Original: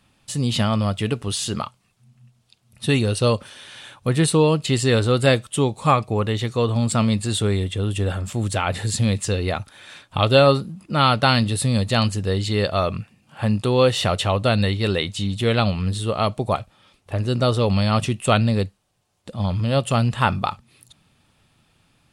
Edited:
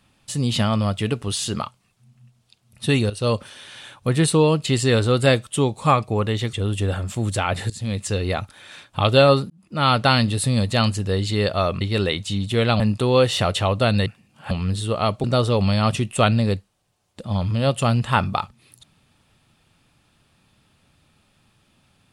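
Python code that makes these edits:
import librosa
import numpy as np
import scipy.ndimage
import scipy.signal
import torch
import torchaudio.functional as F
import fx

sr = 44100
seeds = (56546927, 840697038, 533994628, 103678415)

y = fx.edit(x, sr, fx.fade_in_from(start_s=3.1, length_s=0.26, floor_db=-14.0),
    fx.cut(start_s=6.53, length_s=1.18),
    fx.fade_in_from(start_s=8.88, length_s=0.66, curve='qsin', floor_db=-18.5),
    fx.fade_in_span(start_s=10.68, length_s=0.42),
    fx.swap(start_s=12.99, length_s=0.45, other_s=14.7, other_length_s=0.99),
    fx.cut(start_s=16.42, length_s=0.91), tone=tone)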